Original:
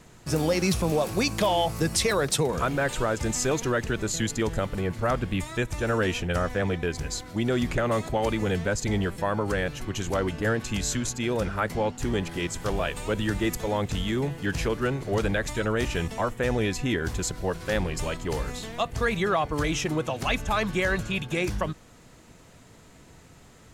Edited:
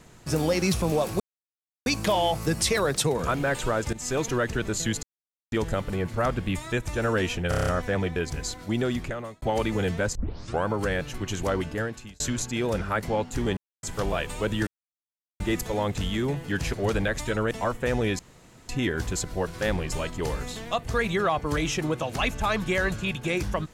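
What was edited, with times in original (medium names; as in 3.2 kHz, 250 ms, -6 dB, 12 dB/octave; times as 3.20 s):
1.20 s: insert silence 0.66 s
3.27–3.65 s: fade in equal-power, from -17.5 dB
4.37 s: insert silence 0.49 s
6.34 s: stutter 0.03 s, 7 plays
7.44–8.09 s: fade out
8.82 s: tape start 0.51 s
10.25–10.87 s: fade out
12.24–12.50 s: mute
13.34 s: insert silence 0.73 s
14.67–15.02 s: delete
15.80–16.08 s: delete
16.76 s: insert room tone 0.50 s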